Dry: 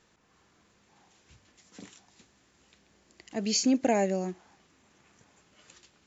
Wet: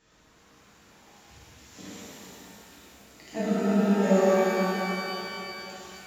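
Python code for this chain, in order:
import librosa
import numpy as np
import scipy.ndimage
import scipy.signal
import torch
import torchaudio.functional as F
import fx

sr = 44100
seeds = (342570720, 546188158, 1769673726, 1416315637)

y = fx.room_flutter(x, sr, wall_m=9.9, rt60_s=0.31)
y = fx.spec_freeze(y, sr, seeds[0], at_s=3.41, hold_s=0.63)
y = fx.rev_shimmer(y, sr, seeds[1], rt60_s=3.3, semitones=12, shimmer_db=-8, drr_db=-11.0)
y = y * librosa.db_to_amplitude(-2.5)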